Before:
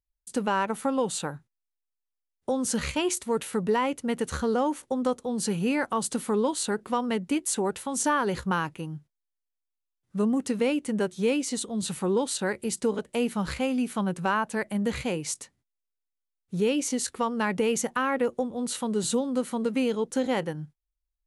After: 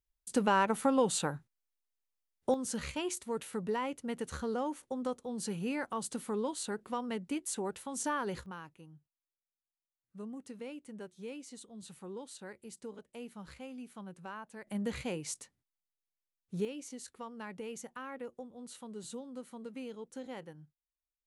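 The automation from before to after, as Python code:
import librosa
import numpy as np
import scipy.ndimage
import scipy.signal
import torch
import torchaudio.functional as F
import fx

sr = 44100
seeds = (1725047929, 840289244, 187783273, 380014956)

y = fx.gain(x, sr, db=fx.steps((0.0, -1.5), (2.54, -9.5), (8.46, -19.0), (14.67, -8.0), (16.65, -17.5)))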